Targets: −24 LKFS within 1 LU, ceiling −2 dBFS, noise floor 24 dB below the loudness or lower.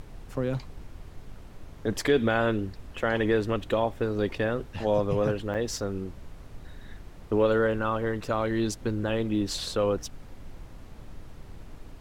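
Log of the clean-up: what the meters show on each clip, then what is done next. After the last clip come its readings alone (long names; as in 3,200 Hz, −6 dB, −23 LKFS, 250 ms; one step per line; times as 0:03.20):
number of dropouts 1; longest dropout 7.9 ms; background noise floor −47 dBFS; target noise floor −52 dBFS; integrated loudness −28.0 LKFS; sample peak −11.0 dBFS; target loudness −24.0 LKFS
→ repair the gap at 0:05.54, 7.9 ms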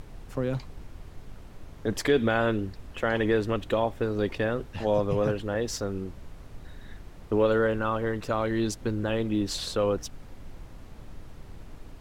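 number of dropouts 0; background noise floor −47 dBFS; target noise floor −52 dBFS
→ noise reduction from a noise print 6 dB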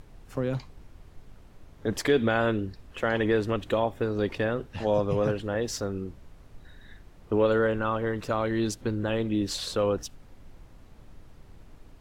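background noise floor −52 dBFS; integrated loudness −28.0 LKFS; sample peak −11.0 dBFS; target loudness −24.0 LKFS
→ level +4 dB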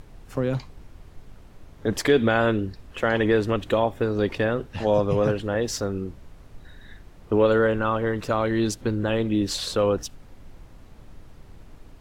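integrated loudness −24.0 LKFS; sample peak −7.0 dBFS; background noise floor −48 dBFS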